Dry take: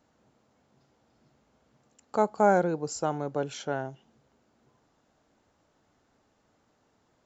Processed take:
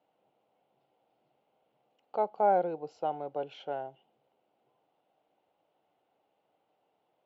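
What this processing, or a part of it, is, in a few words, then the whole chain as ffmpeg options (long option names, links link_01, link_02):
kitchen radio: -af "highpass=220,equalizer=frequency=240:width_type=q:width=4:gain=-10,equalizer=frequency=530:width_type=q:width=4:gain=4,equalizer=frequency=760:width_type=q:width=4:gain=8,equalizer=frequency=1200:width_type=q:width=4:gain=-5,equalizer=frequency=1700:width_type=q:width=4:gain=-9,equalizer=frequency=2900:width_type=q:width=4:gain=5,lowpass=frequency=3500:width=0.5412,lowpass=frequency=3500:width=1.3066,volume=-7dB"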